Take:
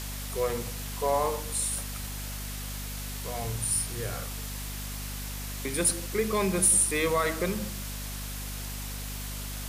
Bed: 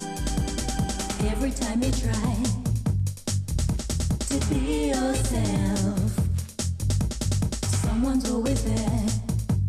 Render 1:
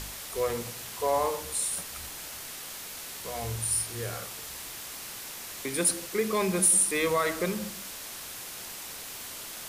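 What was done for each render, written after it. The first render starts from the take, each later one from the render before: de-hum 50 Hz, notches 5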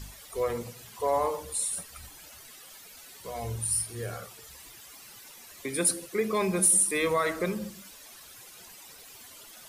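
noise reduction 13 dB, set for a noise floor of -41 dBFS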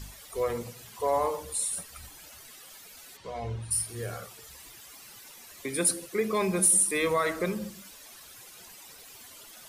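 3.16–3.70 s: low-pass 5 kHz -> 2.9 kHz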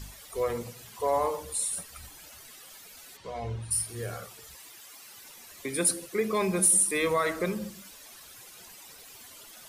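4.55–5.18 s: high-pass 340 Hz 6 dB/octave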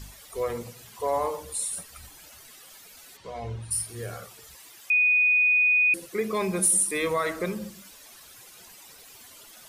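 4.90–5.94 s: bleep 2.48 kHz -17.5 dBFS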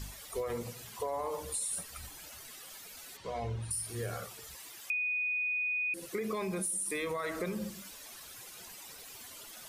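peak limiter -22.5 dBFS, peak gain reduction 9 dB; compression, threshold -32 dBFS, peak gain reduction 7.5 dB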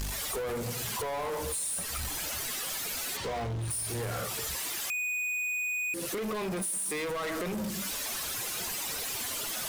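compression 3:1, threshold -44 dBFS, peak gain reduction 10 dB; waveshaping leveller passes 5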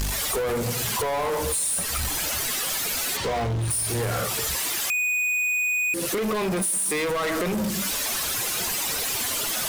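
trim +8 dB

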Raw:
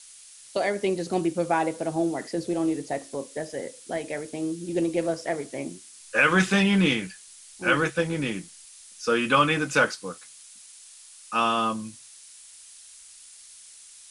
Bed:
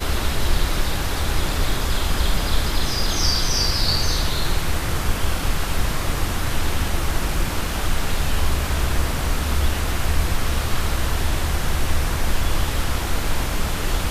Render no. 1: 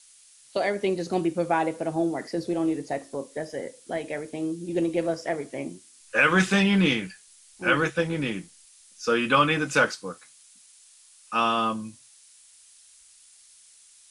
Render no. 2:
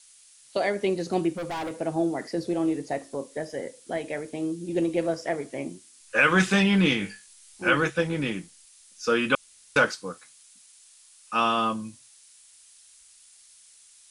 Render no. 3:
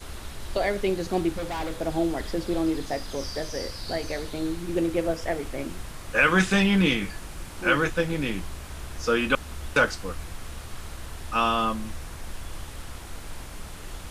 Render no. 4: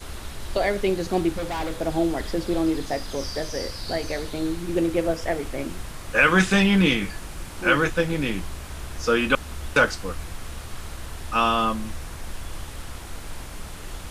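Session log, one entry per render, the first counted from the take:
noise print and reduce 6 dB
1.34–1.81 s: overload inside the chain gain 29.5 dB; 6.98–7.69 s: flutter echo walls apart 3.4 m, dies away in 0.22 s; 9.35–9.76 s: room tone
add bed -16.5 dB
trim +2.5 dB

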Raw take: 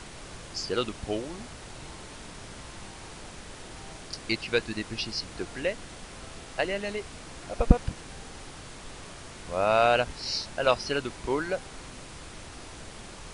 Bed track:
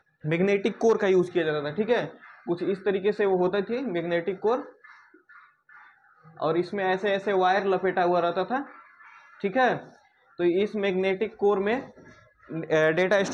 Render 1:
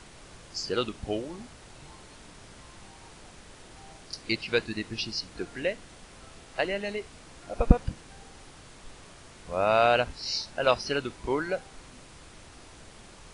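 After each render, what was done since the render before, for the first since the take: noise print and reduce 6 dB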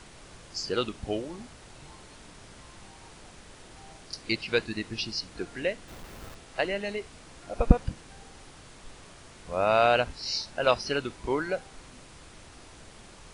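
5.88–6.35 s: square wave that keeps the level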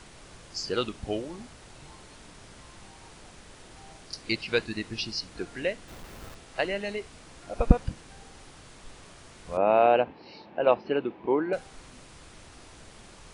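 9.57–11.53 s: cabinet simulation 170–2500 Hz, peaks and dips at 200 Hz +5 dB, 330 Hz +7 dB, 480 Hz +4 dB, 820 Hz +5 dB, 1.4 kHz -8 dB, 2 kHz -5 dB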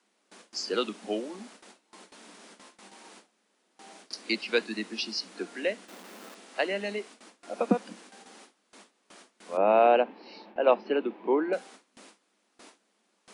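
steep high-pass 190 Hz 96 dB/octave; gate with hold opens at -40 dBFS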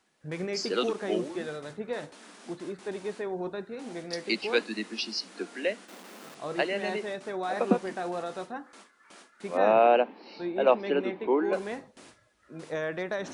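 add bed track -10.5 dB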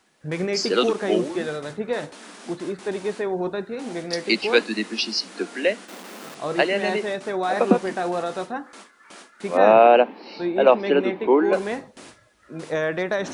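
trim +8 dB; peak limiter -3 dBFS, peak gain reduction 2.5 dB

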